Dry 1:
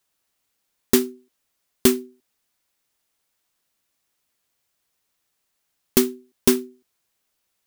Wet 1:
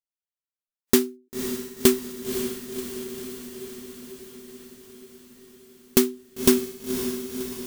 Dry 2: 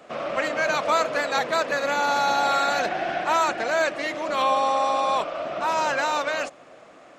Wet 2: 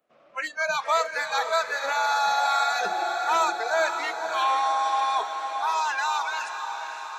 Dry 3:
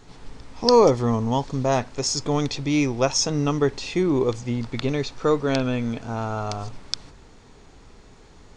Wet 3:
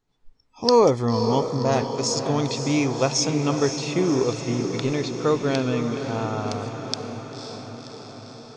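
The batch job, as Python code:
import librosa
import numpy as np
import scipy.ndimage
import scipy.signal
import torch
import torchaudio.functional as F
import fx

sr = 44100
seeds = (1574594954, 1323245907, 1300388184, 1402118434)

y = fx.noise_reduce_blind(x, sr, reduce_db=27)
y = fx.echo_diffused(y, sr, ms=536, feedback_pct=67, wet_db=-8)
y = F.gain(torch.from_numpy(y), -1.0).numpy()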